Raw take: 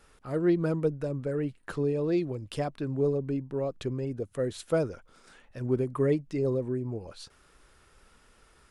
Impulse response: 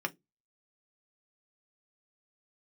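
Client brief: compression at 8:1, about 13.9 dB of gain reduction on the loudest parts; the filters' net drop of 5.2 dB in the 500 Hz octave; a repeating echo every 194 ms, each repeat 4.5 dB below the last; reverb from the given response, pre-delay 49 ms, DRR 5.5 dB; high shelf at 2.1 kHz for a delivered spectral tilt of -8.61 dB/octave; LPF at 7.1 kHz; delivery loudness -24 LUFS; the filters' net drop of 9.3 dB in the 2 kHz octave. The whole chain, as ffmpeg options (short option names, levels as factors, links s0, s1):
-filter_complex "[0:a]lowpass=7100,equalizer=f=500:t=o:g=-6,equalizer=f=2000:t=o:g=-9,highshelf=f=2100:g=-7,acompressor=threshold=0.0126:ratio=8,aecho=1:1:194|388|582|776|970|1164|1358|1552|1746:0.596|0.357|0.214|0.129|0.0772|0.0463|0.0278|0.0167|0.01,asplit=2[s0][s1];[1:a]atrim=start_sample=2205,adelay=49[s2];[s1][s2]afir=irnorm=-1:irlink=0,volume=0.299[s3];[s0][s3]amix=inputs=2:normalize=0,volume=7.08"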